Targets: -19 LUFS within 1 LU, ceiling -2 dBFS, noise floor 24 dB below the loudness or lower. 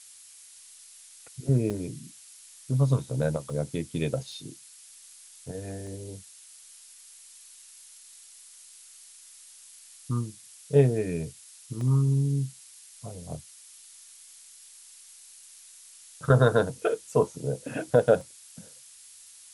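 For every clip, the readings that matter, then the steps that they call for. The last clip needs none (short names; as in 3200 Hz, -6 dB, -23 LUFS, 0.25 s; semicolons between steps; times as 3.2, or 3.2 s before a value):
dropouts 6; longest dropout 1.6 ms; noise floor -51 dBFS; noise floor target -52 dBFS; loudness -27.5 LUFS; peak -6.5 dBFS; loudness target -19.0 LUFS
-> interpolate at 1.7/3.5/4.32/5.87/11.81/18.21, 1.6 ms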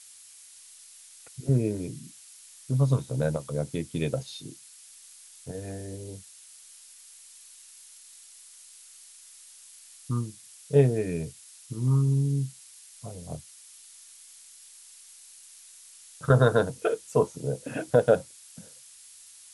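dropouts 0; noise floor -51 dBFS; noise floor target -52 dBFS
-> denoiser 6 dB, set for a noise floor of -51 dBFS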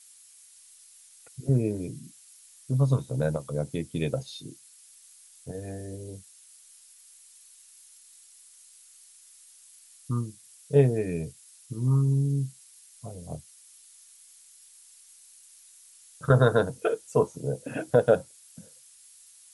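noise floor -55 dBFS; loudness -27.5 LUFS; peak -6.0 dBFS; loudness target -19.0 LUFS
-> gain +8.5 dB; limiter -2 dBFS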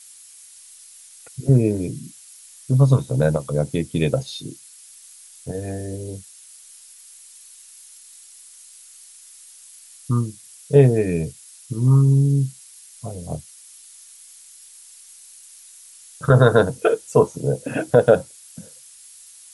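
loudness -19.5 LUFS; peak -2.0 dBFS; noise floor -46 dBFS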